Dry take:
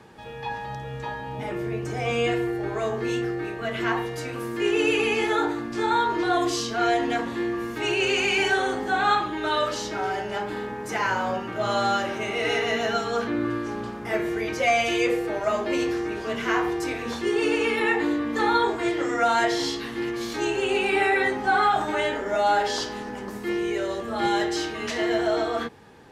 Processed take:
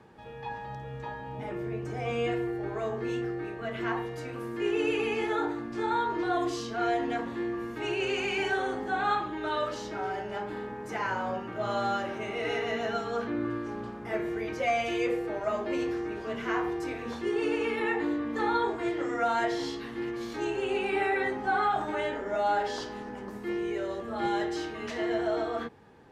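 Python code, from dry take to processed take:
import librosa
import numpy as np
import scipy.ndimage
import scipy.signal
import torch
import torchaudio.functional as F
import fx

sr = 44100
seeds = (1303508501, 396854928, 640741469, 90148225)

y = fx.high_shelf(x, sr, hz=2700.0, db=-8.5)
y = F.gain(torch.from_numpy(y), -5.0).numpy()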